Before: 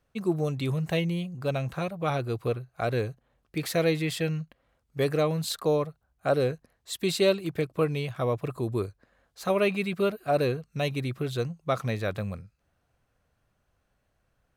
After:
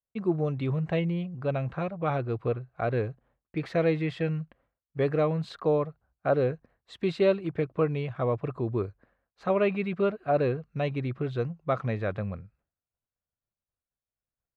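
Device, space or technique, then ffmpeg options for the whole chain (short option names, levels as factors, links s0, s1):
hearing-loss simulation: -af "lowpass=2100,agate=range=0.0224:threshold=0.00141:ratio=3:detection=peak"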